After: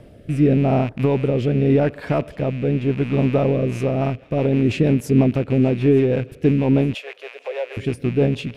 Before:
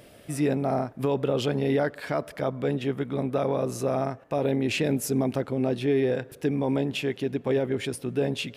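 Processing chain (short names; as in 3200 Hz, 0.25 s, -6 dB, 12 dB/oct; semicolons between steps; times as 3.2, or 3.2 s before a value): rattling part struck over -38 dBFS, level -25 dBFS; tilt -3 dB/oct; 6.94–7.77 steep high-pass 510 Hz 48 dB/oct; on a send: thin delay 0.904 s, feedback 71%, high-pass 2100 Hz, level -19 dB; on the sum: rotary speaker horn 0.85 Hz, later 6.3 Hz, at 3.37; gain +4.5 dB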